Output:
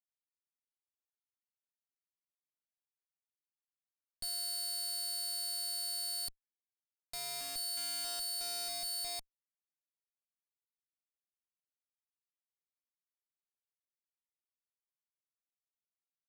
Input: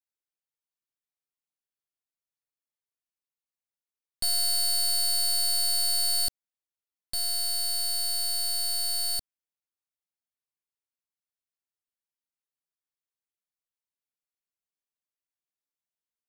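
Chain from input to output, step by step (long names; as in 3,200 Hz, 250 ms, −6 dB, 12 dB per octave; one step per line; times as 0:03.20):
feedback echo with a low-pass in the loop 637 ms, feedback 77%, low-pass 2,900 Hz, level −10 dB
comparator with hysteresis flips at −31.5 dBFS
level −7 dB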